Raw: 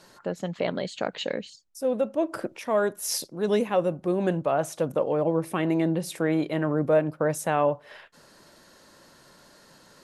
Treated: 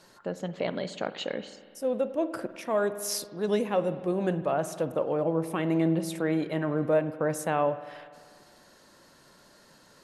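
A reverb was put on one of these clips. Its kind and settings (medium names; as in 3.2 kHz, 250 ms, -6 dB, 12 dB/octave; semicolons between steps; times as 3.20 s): spring tank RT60 1.9 s, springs 49 ms, chirp 65 ms, DRR 12 dB; trim -3 dB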